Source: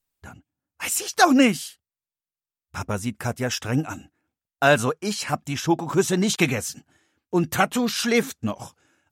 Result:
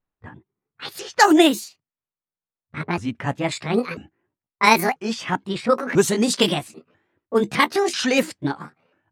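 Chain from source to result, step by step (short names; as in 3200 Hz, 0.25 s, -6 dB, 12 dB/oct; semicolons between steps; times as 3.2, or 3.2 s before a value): repeated pitch sweeps +9.5 st, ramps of 0.992 s; low-pass opened by the level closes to 1500 Hz, open at -17 dBFS; gain +3.5 dB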